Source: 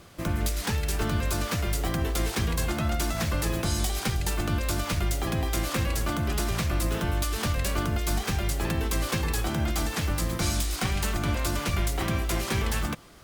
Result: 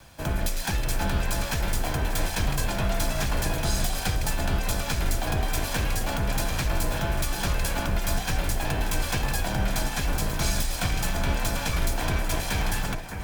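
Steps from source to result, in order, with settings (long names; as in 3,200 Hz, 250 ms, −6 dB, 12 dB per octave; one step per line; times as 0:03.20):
lower of the sound and its delayed copy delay 1.2 ms
frequency shifter −25 Hz
delay that swaps between a low-pass and a high-pass 608 ms, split 2,300 Hz, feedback 54%, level −7.5 dB
level +2 dB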